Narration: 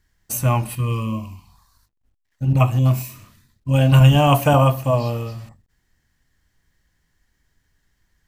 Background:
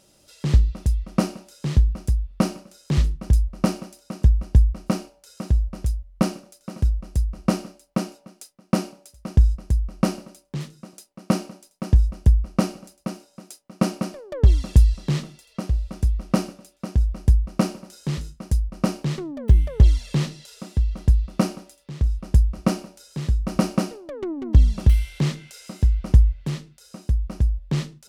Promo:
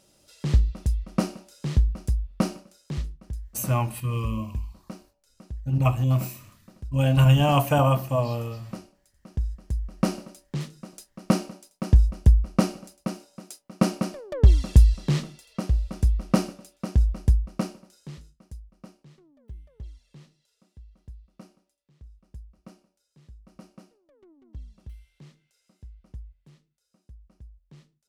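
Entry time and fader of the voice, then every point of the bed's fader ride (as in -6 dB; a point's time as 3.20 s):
3.25 s, -5.5 dB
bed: 2.54 s -3.5 dB
3.34 s -17 dB
9.09 s -17 dB
10.21 s -0.5 dB
17.10 s -0.5 dB
19.03 s -27 dB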